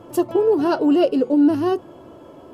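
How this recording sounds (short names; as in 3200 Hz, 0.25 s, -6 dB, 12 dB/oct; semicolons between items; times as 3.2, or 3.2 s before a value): noise floor -44 dBFS; spectral tilt -4.0 dB/oct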